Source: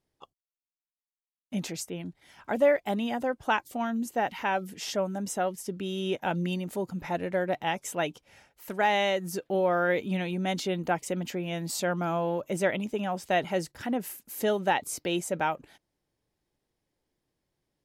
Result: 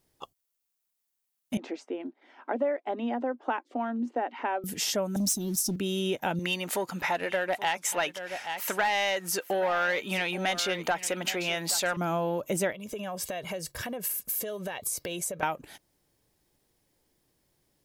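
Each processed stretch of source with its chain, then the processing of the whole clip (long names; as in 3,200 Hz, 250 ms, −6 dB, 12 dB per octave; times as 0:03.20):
0:01.57–0:04.64: Chebyshev high-pass filter 240 Hz, order 6 + head-to-tape spacing loss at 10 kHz 43 dB
0:05.16–0:05.76: elliptic band-stop filter 320–3,900 Hz + parametric band 5,700 Hz +7.5 dB 0.26 octaves + leveller curve on the samples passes 2
0:06.39–0:11.97: mid-hump overdrive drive 14 dB, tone 1,200 Hz, clips at −12.5 dBFS + tilt shelving filter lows −8 dB, about 860 Hz + single-tap delay 825 ms −15.5 dB
0:12.72–0:15.43: comb filter 1.8 ms, depth 61% + downward compressor, threshold −40 dBFS
whole clip: high-shelf EQ 7,300 Hz +11 dB; downward compressor 3 to 1, threshold −35 dBFS; level +7 dB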